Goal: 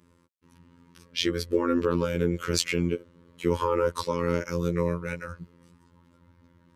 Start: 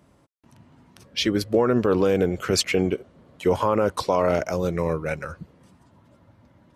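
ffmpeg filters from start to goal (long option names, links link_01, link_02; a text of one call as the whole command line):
ffmpeg -i in.wav -af "asuperstop=centerf=710:order=12:qfactor=2.4,afftfilt=real='hypot(re,im)*cos(PI*b)':imag='0':win_size=2048:overlap=0.75" out.wav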